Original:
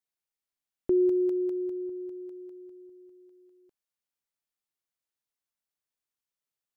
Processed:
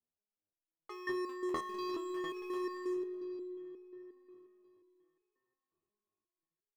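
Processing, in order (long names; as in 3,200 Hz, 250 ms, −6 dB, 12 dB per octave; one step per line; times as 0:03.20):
low-pass that shuts in the quiet parts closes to 510 Hz, open at −28 dBFS
in parallel at +2 dB: downward compressor 6 to 1, threshold −32 dBFS, peak gain reduction 10.5 dB
on the sum: bouncing-ball delay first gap 650 ms, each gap 0.65×, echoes 5
wave folding −22 dBFS
on a send at −13 dB: convolution reverb RT60 5.2 s, pre-delay 65 ms
on the sum: step-sequenced resonator 5.6 Hz 81–420 Hz
level +7 dB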